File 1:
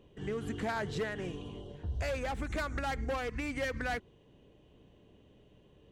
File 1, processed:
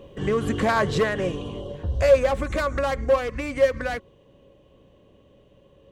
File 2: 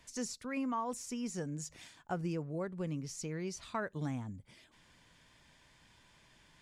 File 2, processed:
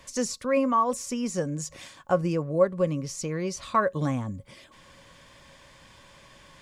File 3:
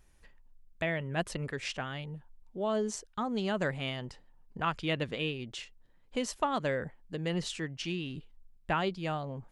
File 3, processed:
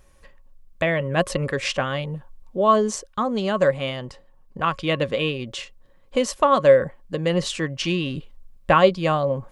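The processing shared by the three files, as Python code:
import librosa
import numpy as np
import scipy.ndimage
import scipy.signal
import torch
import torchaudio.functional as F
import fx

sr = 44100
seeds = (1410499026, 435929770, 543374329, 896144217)

y = fx.small_body(x, sr, hz=(550.0, 1100.0), ring_ms=90, db=15)
y = fx.rider(y, sr, range_db=5, speed_s=2.0)
y = y * 10.0 ** (8.0 / 20.0)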